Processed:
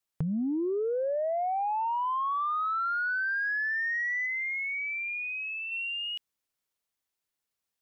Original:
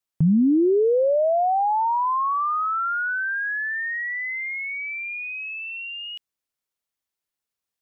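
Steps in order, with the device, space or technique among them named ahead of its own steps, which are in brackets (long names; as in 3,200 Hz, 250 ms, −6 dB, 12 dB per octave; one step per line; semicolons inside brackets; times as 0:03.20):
drum-bus smash (transient designer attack +5 dB, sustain +1 dB; downward compressor 12 to 1, threshold −27 dBFS, peak gain reduction 15 dB; soft clipping −20.5 dBFS, distortion −28 dB)
0:04.26–0:05.72: bass and treble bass 0 dB, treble −15 dB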